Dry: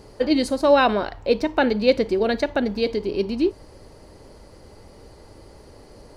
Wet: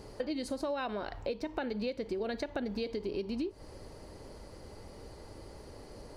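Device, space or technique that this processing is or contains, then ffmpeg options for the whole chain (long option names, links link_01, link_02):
serial compression, peaks first: -af "acompressor=threshold=-25dB:ratio=6,acompressor=threshold=-32dB:ratio=2,volume=-3dB"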